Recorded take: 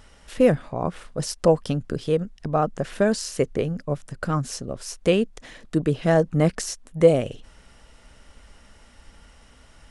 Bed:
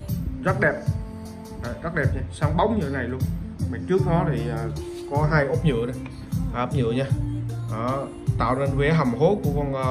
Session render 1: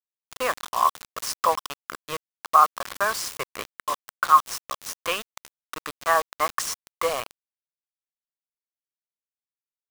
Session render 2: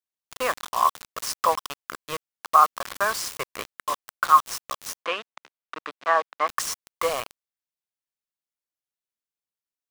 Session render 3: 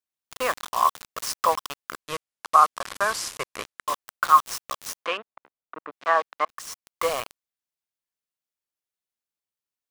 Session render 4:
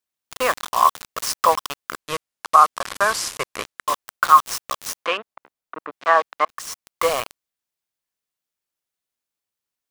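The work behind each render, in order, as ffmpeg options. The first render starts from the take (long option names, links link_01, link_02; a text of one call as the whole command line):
ffmpeg -i in.wav -af "highpass=frequency=1100:width_type=q:width=9.1,acrusher=bits=4:mix=0:aa=0.000001" out.wav
ffmpeg -i in.wav -filter_complex "[0:a]asplit=3[link_01][link_02][link_03];[link_01]afade=type=out:start_time=5.02:duration=0.02[link_04];[link_02]highpass=270,lowpass=3100,afade=type=in:start_time=5.02:duration=0.02,afade=type=out:start_time=6.47:duration=0.02[link_05];[link_03]afade=type=in:start_time=6.47:duration=0.02[link_06];[link_04][link_05][link_06]amix=inputs=3:normalize=0" out.wav
ffmpeg -i in.wav -filter_complex "[0:a]asettb=1/sr,asplit=3[link_01][link_02][link_03];[link_01]atrim=end=2.014[link_04];[link_02]atrim=start=2.01:end=3.88,asetpts=PTS-STARTPTS,afade=type=in:duration=0.004:curve=qsin,afade=type=out:start_time=1.866:duration=0.004:curve=qsin,lowpass=frequency=12000:width=0.5412,lowpass=frequency=12000:width=1.3066[link_05];[link_03]atrim=start=3.876[link_06];[link_04][link_05]acrossfade=duration=0.004:curve1=hsin:curve2=qsin[link_07];[link_07][link_06]acrossfade=duration=0.004:curve1=qsin:curve2=hsin,asettb=1/sr,asplit=3[link_08][link_09][link_10];[link_08]atrim=end=5.174[link_11];[link_09]atrim=start=5.17:end=5.92,asetpts=PTS-STARTPTS,afade=type=in:duration=0.004:curve=qsin,afade=type=out:start_time=0.746:duration=0.004:curve=qsin,lowpass=1200[link_12];[link_10]atrim=start=5.916[link_13];[link_11][link_12]acrossfade=duration=0.004:curve1=hsin:curve2=qsin[link_14];[link_14][link_13]acrossfade=duration=0.004:curve1=qsin:curve2=hsin,asplit=2[link_15][link_16];[link_15]atrim=end=6.45,asetpts=PTS-STARTPTS,afade=type=out:start_time=6.446:duration=0.004:curve=hsin[link_17];[link_16]atrim=start=6.45,asetpts=PTS-STARTPTS,afade=type=in:duration=0.59[link_18];[link_17][link_18]concat=n=2:v=0:a=1" out.wav
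ffmpeg -i in.wav -af "volume=5dB,alimiter=limit=-1dB:level=0:latency=1" out.wav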